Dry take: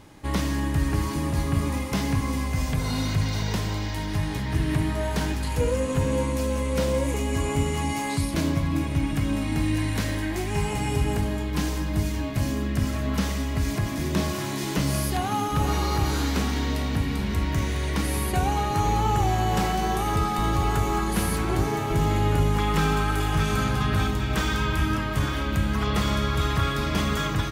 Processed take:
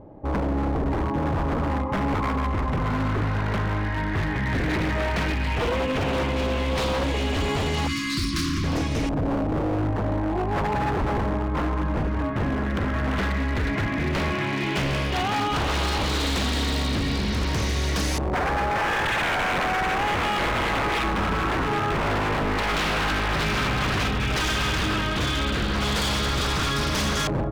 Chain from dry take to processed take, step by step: LFO low-pass saw up 0.11 Hz 610–6000 Hz; wavefolder -22 dBFS; 7.87–8.64 brick-wall FIR band-stop 380–1000 Hz; gain +3 dB

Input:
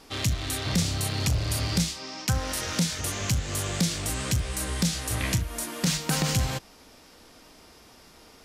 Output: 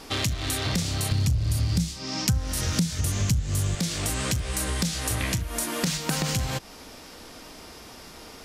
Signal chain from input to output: 1.11–3.75 tone controls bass +14 dB, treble +5 dB; compressor 4:1, threshold -33 dBFS, peak gain reduction 20.5 dB; gain +8 dB

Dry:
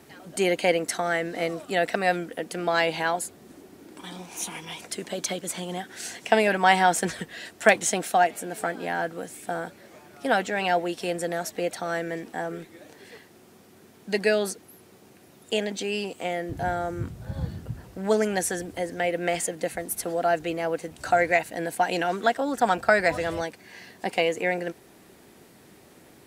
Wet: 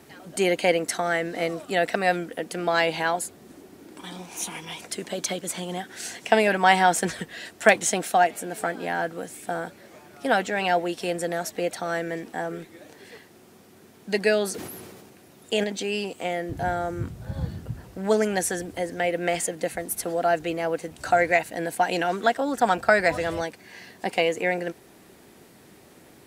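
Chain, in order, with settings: 14.51–15.64 sustainer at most 30 dB/s; gain +1 dB

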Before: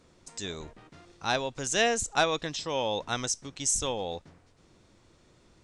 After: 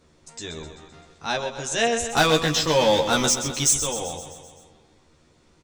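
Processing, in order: 2.09–3.73 sample leveller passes 3; doubler 13 ms -2.5 dB; feedback echo 0.129 s, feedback 60%, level -10 dB

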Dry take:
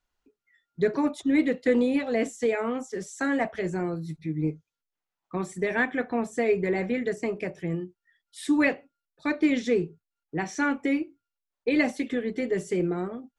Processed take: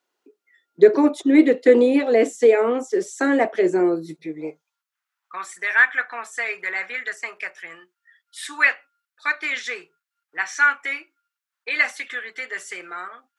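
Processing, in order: high-pass sweep 360 Hz -> 1400 Hz, 4.11–4.95; gain +5.5 dB

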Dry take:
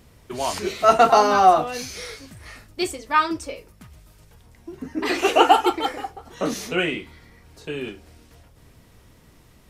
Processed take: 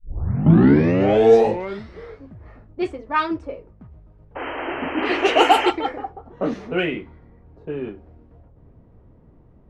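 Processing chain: tape start at the beginning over 2.15 s; in parallel at -9.5 dB: soft clip -17.5 dBFS, distortion -7 dB; on the sum: painted sound noise, 4.35–5.71, 250–3200 Hz -24 dBFS; dynamic EQ 1200 Hz, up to -4 dB, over -31 dBFS, Q 1.7; low-pass opened by the level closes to 660 Hz, open at -9 dBFS

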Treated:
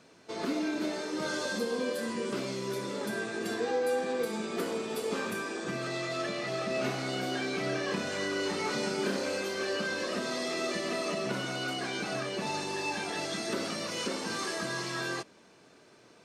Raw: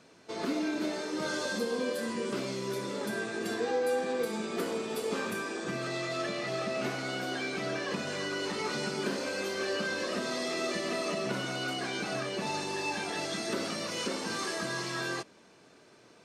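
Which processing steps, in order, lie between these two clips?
6.67–9.38 doubler 31 ms -5 dB

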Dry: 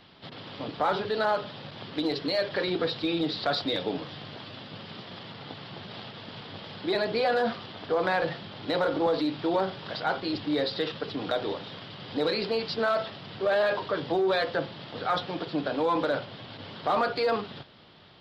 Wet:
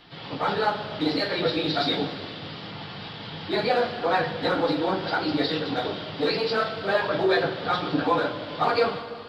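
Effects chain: two-slope reverb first 0.43 s, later 4.4 s, from -18 dB, DRR -7.5 dB; plain phase-vocoder stretch 0.51×

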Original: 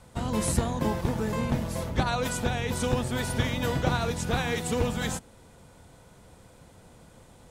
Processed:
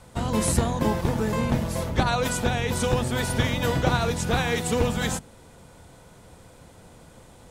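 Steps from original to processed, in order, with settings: notches 50/100/150/200/250 Hz; gain +4 dB

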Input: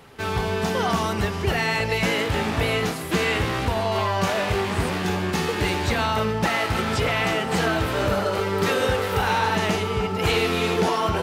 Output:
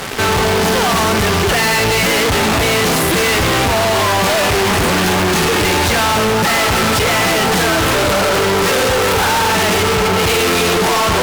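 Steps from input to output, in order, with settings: tone controls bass -3 dB, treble -1 dB; fuzz box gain 51 dB, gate -47 dBFS

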